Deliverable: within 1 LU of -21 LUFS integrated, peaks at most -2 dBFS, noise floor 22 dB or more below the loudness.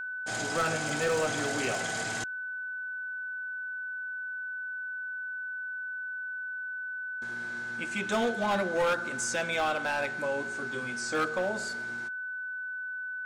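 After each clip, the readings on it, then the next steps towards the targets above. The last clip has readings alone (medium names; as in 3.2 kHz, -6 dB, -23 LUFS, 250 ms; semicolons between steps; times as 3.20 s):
clipped samples 1.2%; clipping level -23.0 dBFS; steady tone 1.5 kHz; tone level -34 dBFS; loudness -32.0 LUFS; peak level -23.0 dBFS; loudness target -21.0 LUFS
-> clip repair -23 dBFS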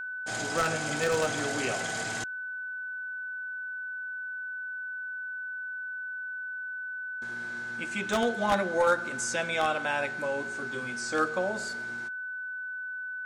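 clipped samples 0.0%; steady tone 1.5 kHz; tone level -34 dBFS
-> band-stop 1.5 kHz, Q 30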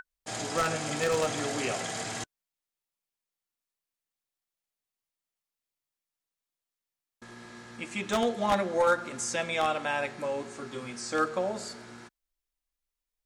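steady tone not found; loudness -30.0 LUFS; peak level -13.5 dBFS; loudness target -21.0 LUFS
-> trim +9 dB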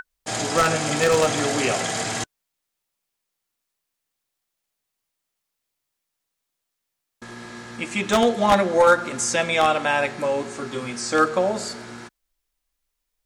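loudness -21.0 LUFS; peak level -4.5 dBFS; noise floor -81 dBFS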